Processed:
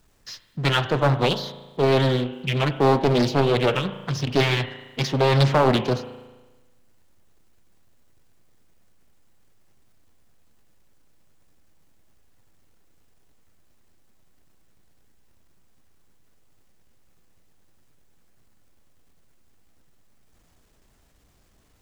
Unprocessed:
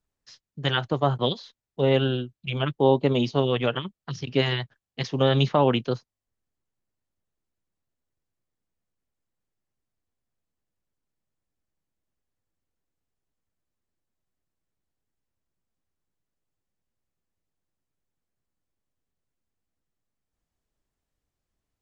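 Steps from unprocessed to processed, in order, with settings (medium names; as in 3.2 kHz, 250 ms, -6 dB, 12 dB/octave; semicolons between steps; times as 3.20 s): power-law waveshaper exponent 0.7; spring tank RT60 1.2 s, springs 36 ms, chirp 75 ms, DRR 10 dB; loudspeaker Doppler distortion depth 0.79 ms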